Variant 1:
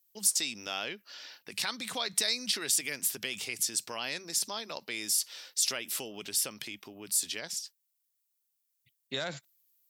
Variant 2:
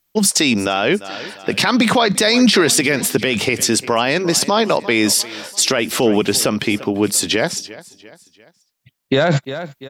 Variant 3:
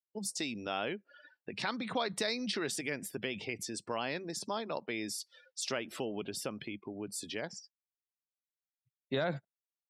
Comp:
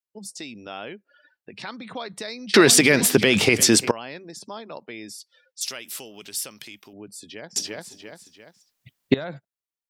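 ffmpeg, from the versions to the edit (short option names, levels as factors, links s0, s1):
-filter_complex "[1:a]asplit=2[s0][s1];[2:a]asplit=4[s2][s3][s4][s5];[s2]atrim=end=2.542[s6];[s0]atrim=start=2.538:end=3.912[s7];[s3]atrim=start=3.908:end=5.612[s8];[0:a]atrim=start=5.608:end=6.932[s9];[s4]atrim=start=6.928:end=7.562[s10];[s1]atrim=start=7.558:end=9.142[s11];[s5]atrim=start=9.138[s12];[s6][s7]acrossfade=d=0.004:c1=hsin:c2=hsin[s13];[s13][s8]acrossfade=d=0.004:c1=hsin:c2=hsin[s14];[s14][s9]acrossfade=d=0.004:c1=hsin:c2=hsin[s15];[s15][s10]acrossfade=d=0.004:c1=hsin:c2=hsin[s16];[s16][s11]acrossfade=d=0.004:c1=hsin:c2=hsin[s17];[s17][s12]acrossfade=d=0.004:c1=hsin:c2=hsin"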